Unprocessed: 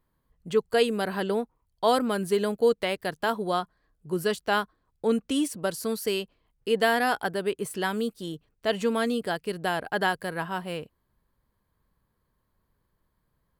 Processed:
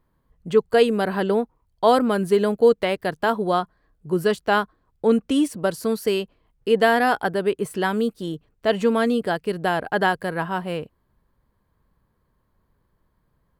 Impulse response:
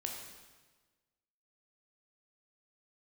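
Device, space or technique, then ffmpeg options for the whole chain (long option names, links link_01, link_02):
behind a face mask: -af "highshelf=frequency=2600:gain=-8,volume=6.5dB"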